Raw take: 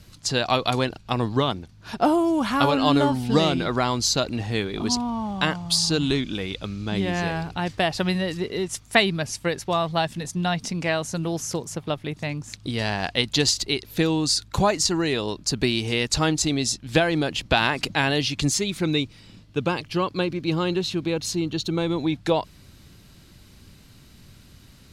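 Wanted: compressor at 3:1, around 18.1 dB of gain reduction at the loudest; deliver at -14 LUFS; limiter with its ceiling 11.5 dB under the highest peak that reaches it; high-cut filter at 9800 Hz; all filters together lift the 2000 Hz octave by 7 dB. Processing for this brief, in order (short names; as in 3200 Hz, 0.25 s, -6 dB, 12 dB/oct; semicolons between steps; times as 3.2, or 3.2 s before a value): LPF 9800 Hz; bell 2000 Hz +9 dB; compressor 3:1, threshold -33 dBFS; gain +21.5 dB; limiter -3.5 dBFS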